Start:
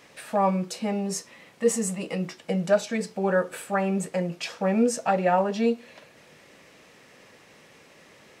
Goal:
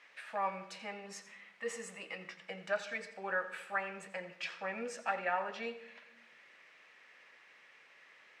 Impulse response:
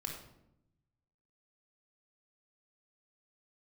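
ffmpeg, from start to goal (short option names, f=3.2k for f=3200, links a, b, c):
-filter_complex "[0:a]bandpass=f=1.9k:t=q:w=1.4:csg=0,asplit=2[a][b];[1:a]atrim=start_sample=2205,adelay=85[c];[b][c]afir=irnorm=-1:irlink=0,volume=-12dB[d];[a][d]amix=inputs=2:normalize=0,volume=-3dB"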